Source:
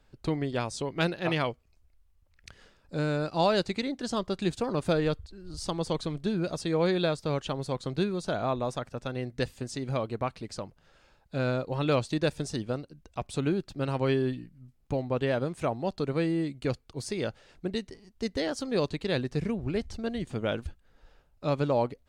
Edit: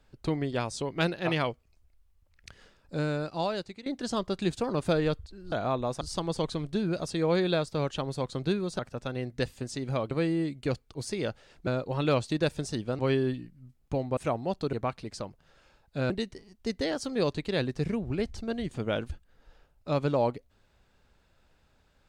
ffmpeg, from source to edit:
-filter_complex "[0:a]asplit=11[s0][s1][s2][s3][s4][s5][s6][s7][s8][s9][s10];[s0]atrim=end=3.86,asetpts=PTS-STARTPTS,afade=t=out:st=2.95:d=0.91:silence=0.125893[s11];[s1]atrim=start=3.86:end=5.522,asetpts=PTS-STARTPTS,afade=t=in:d=0.004:c=hsin:silence=0.125893[s12];[s2]atrim=start=8.298:end=8.792[s13];[s3]atrim=start=5.518:end=8.302[s14];[s4]atrim=start=8.788:end=10.112[s15];[s5]atrim=start=16.098:end=17.662[s16];[s6]atrim=start=11.478:end=12.802[s17];[s7]atrim=start=13.978:end=15.162[s18];[s8]atrim=start=15.538:end=16.102[s19];[s9]atrim=start=10.108:end=11.482[s20];[s10]atrim=start=17.658[s21];[s11][s12]concat=n=2:v=0:a=1[s22];[s22][s13]acrossfade=d=0.004:c1=hsin:c2=hsin[s23];[s23][s14]acrossfade=d=0.004:c1=hsin:c2=hsin[s24];[s24][s15]acrossfade=d=0.004:c1=hsin:c2=hsin[s25];[s25][s16]acrossfade=d=0.004:c1=hsin:c2=hsin[s26];[s26][s17]acrossfade=d=0.004:c1=hsin:c2=hsin[s27];[s27][s18]acrossfade=d=0.004:c1=hsin:c2=hsin[s28];[s28][s19]acrossfade=d=0.004:c1=hsin:c2=hsin[s29];[s29][s20]acrossfade=d=0.004:c1=hsin:c2=hsin[s30];[s30][s21]acrossfade=d=0.004:c1=hsin:c2=hsin"

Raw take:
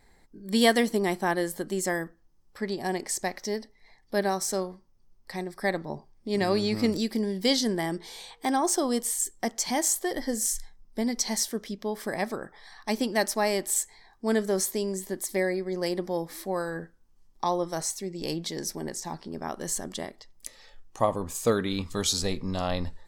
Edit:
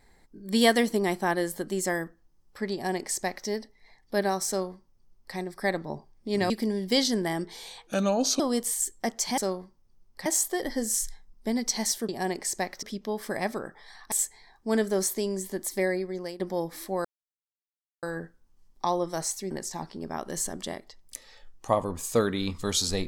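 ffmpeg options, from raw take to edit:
-filter_complex "[0:a]asplit=12[s0][s1][s2][s3][s4][s5][s6][s7][s8][s9][s10][s11];[s0]atrim=end=6.502[s12];[s1]atrim=start=7.028:end=8.404[s13];[s2]atrim=start=8.4:end=8.79,asetpts=PTS-STARTPTS,asetrate=32634,aresample=44100[s14];[s3]atrim=start=8.786:end=9.772[s15];[s4]atrim=start=4.478:end=5.362[s16];[s5]atrim=start=9.768:end=11.602[s17];[s6]atrim=start=2.728:end=3.472[s18];[s7]atrim=start=11.598:end=12.892[s19];[s8]atrim=start=13.688:end=15.97,asetpts=PTS-STARTPTS,afade=t=out:st=1.752:d=0.53:c=qsin:silence=0.125893[s20];[s9]atrim=start=15.97:end=16.62,asetpts=PTS-STARTPTS,afade=t=in:d=0.004:c=hsin:silence=0.125893,afade=t=out:st=0.646:d=0.004:c=hsin,apad=pad_dur=0.98[s21];[s10]atrim=start=16.62:end=18.102,asetpts=PTS-STARTPTS,afade=t=in:d=0.004:c=hsin[s22];[s11]atrim=start=18.818[s23];[s12][s13]acrossfade=d=0.004:c1=hsin:c2=hsin[s24];[s24][s14]acrossfade=d=0.004:c1=hsin:c2=hsin[s25];[s25][s15]acrossfade=d=0.004:c1=hsin:c2=hsin[s26];[s26][s16]acrossfade=d=0.004:c1=hsin:c2=hsin[s27];[s27][s17]acrossfade=d=0.004:c1=hsin:c2=hsin[s28];[s28][s18]acrossfade=d=0.004:c1=hsin:c2=hsin[s29];[s29][s19]acrossfade=d=0.004:c1=hsin:c2=hsin[s30];[s20][s21][s22]concat=n=3:v=0:a=1[s31];[s30][s31]acrossfade=d=0.004:c1=hsin:c2=hsin[s32];[s32][s23]acrossfade=d=0.004:c1=hsin:c2=hsin"

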